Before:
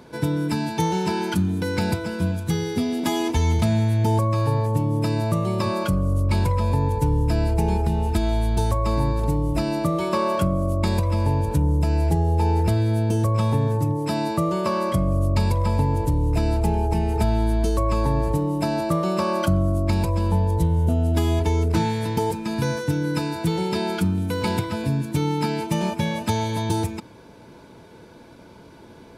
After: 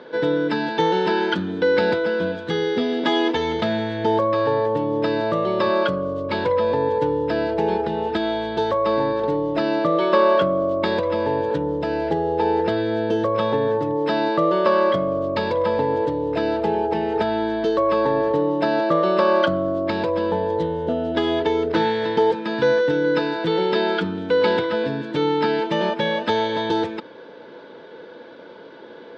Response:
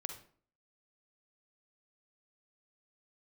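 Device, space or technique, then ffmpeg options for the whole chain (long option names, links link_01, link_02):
phone earpiece: -af "highpass=370,equalizer=frequency=500:width_type=q:width=4:gain=7,equalizer=frequency=720:width_type=q:width=4:gain=-4,equalizer=frequency=1000:width_type=q:width=4:gain=-4,equalizer=frequency=1700:width_type=q:width=4:gain=4,equalizer=frequency=2400:width_type=q:width=4:gain=-8,equalizer=frequency=3400:width_type=q:width=4:gain=3,lowpass=frequency=3700:width=0.5412,lowpass=frequency=3700:width=1.3066,volume=7dB"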